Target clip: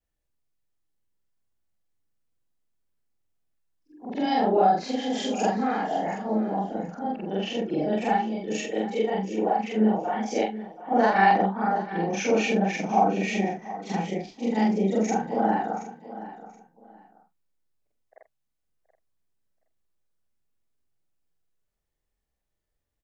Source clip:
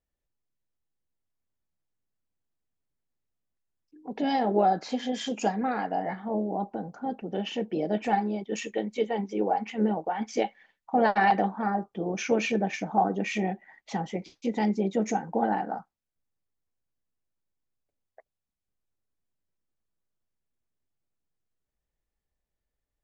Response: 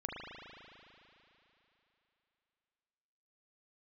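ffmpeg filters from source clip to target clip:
-filter_complex "[0:a]afftfilt=real='re':imag='-im':win_size=4096:overlap=0.75,asplit=2[s0][s1];[s1]aecho=0:1:726|1452:0.178|0.0409[s2];[s0][s2]amix=inputs=2:normalize=0,volume=2.24"

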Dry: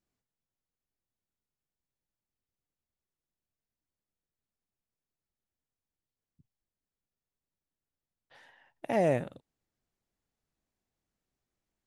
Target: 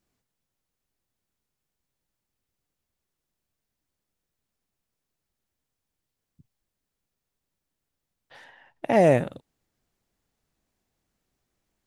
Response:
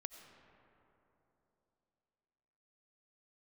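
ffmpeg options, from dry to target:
-filter_complex "[0:a]asettb=1/sr,asplit=3[s0][s1][s2];[s0]atrim=end=8.444[s3];[s1]atrim=start=8.44:end=8.96,asetpts=PTS-STARTPTS,afade=t=in:d=0.004:c=qsin,afade=t=out:st=0.516:d=0.004:c=qsin,highshelf=f=6900:g=-9.5[s4];[s2]atrim=start=8.956[s5];[s3][s4]acrossfade=d=0.004:c1=hsin:c2=qsin[s6];[s6][s5]acrossfade=d=0.004:c1=qsin:c2=hsin,volume=2.66"

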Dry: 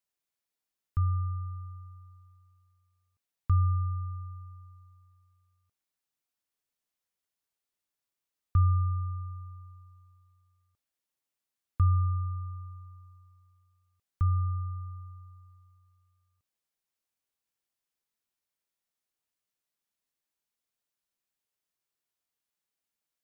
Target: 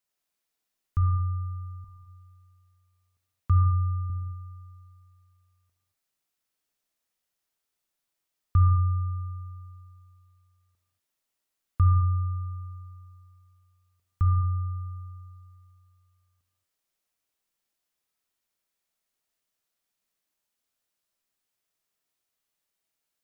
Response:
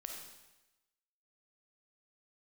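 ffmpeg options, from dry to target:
-filter_complex "[0:a]asettb=1/sr,asplit=3[s0][s1][s2];[s0]atrim=end=1.844[s3];[s1]atrim=start=1.84:end=4.1,asetpts=PTS-STARTPTS,afade=t=in:d=0.004:c=qsin,afade=t=out:st=2.256:d=0.004:c=qsin,highpass=f=43:w=0.5412,highpass=f=43:w=1.3066[s4];[s2]atrim=start=4.096[s5];[s3][s4]acrossfade=d=0.004:c1=hsin:c2=qsin[s6];[s6][s5]acrossfade=d=0.004:c1=qsin:c2=hsin[s7];[1:a]atrim=start_sample=2205,afade=t=out:st=0.3:d=0.01,atrim=end_sample=13671[s8];[s7][s8]afir=irnorm=-1:irlink=0,volume=2.51"

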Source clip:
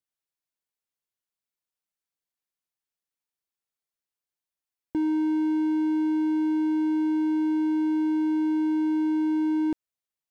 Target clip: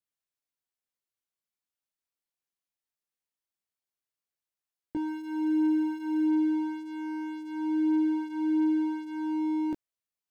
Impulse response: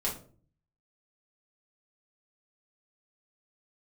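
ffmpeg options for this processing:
-filter_complex "[0:a]asettb=1/sr,asplit=3[s0][s1][s2];[s0]atrim=end=5.074[s3];[s1]atrim=start=5.07:end=6.27,asetpts=PTS-STARTPTS,afade=t=in:d=0.004:c=qsin,afade=t=out:st=1.196:d=0.004:c=qsin,aeval=exprs='val(0)+0.5*0.00447*sgn(val(0))':c=same[s4];[s2]atrim=start=6.266[s5];[s3][s4]acrossfade=d=0.004:c1=hsin:c2=qsin[s6];[s6][s5]acrossfade=d=0.004:c1=qsin:c2=hsin,flanger=delay=17:depth=7.4:speed=0.21"

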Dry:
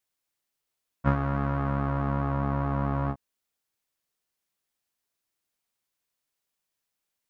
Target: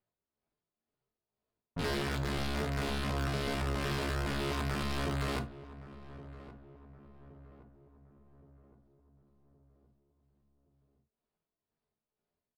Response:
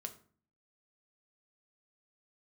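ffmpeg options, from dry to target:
-filter_complex "[0:a]tremolo=f=3.5:d=0.59,tiltshelf=f=1100:g=8,acrossover=split=1300[s0][s1];[s0]acontrast=27[s2];[s2][s1]amix=inputs=2:normalize=0,equalizer=f=120:t=o:w=0.64:g=-2,aresample=11025,aeval=exprs='(mod(8.41*val(0)+1,2)-1)/8.41':c=same,aresample=44100,atempo=0.58,asoftclip=type=tanh:threshold=0.0422,asplit=2[s3][s4];[s4]adelay=1119,lowpass=f=1100:p=1,volume=0.178,asplit=2[s5][s6];[s6]adelay=1119,lowpass=f=1100:p=1,volume=0.52,asplit=2[s7][s8];[s8]adelay=1119,lowpass=f=1100:p=1,volume=0.52,asplit=2[s9][s10];[s10]adelay=1119,lowpass=f=1100:p=1,volume=0.52,asplit=2[s11][s12];[s12]adelay=1119,lowpass=f=1100:p=1,volume=0.52[s13];[s3][s5][s7][s9][s11][s13]amix=inputs=6:normalize=0[s14];[1:a]atrim=start_sample=2205,atrim=end_sample=3528[s15];[s14][s15]afir=irnorm=-1:irlink=0"

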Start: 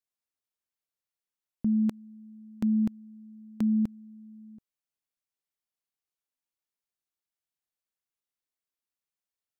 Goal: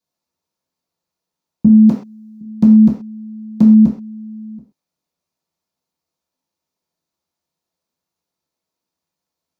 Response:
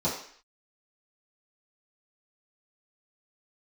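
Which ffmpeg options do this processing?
-filter_complex "[0:a]asettb=1/sr,asplit=3[s0][s1][s2];[s0]atrim=end=1.984[s3];[s1]atrim=start=1.98:end=2.41,asetpts=PTS-STARTPTS,afade=t=in:d=0.004:c=qsin,afade=t=out:st=0.426:d=0.004:c=qsin,bass=f=250:g=-12,treble=f=4000:g=6[s4];[s2]atrim=start=2.406[s5];[s3][s4]acrossfade=d=0.004:c1=hsin:c2=qsin[s6];[s6][s5]acrossfade=d=0.004:c1=qsin:c2=hsin[s7];[1:a]atrim=start_sample=2205,atrim=end_sample=6174[s8];[s7][s8]afir=irnorm=-1:irlink=0,volume=1.41"

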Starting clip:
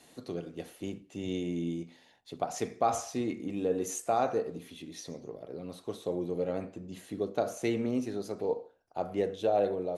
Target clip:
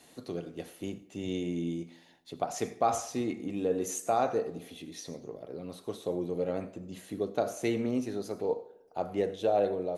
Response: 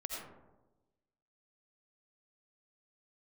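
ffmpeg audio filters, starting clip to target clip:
-filter_complex "[0:a]asplit=2[s0][s1];[s1]aemphasis=mode=production:type=bsi[s2];[1:a]atrim=start_sample=2205[s3];[s2][s3]afir=irnorm=-1:irlink=0,volume=0.126[s4];[s0][s4]amix=inputs=2:normalize=0"

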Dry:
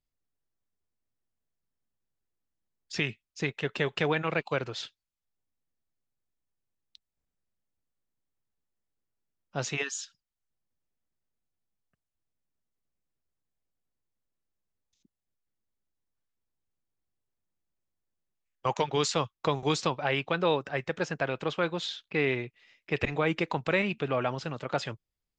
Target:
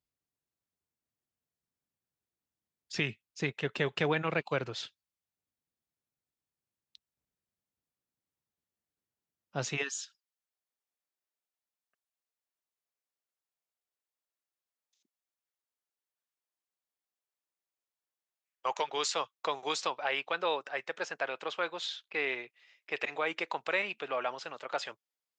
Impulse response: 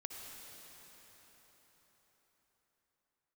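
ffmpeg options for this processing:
-af "asetnsamples=n=441:p=0,asendcmd='9.98 highpass f 570',highpass=72,volume=0.794"

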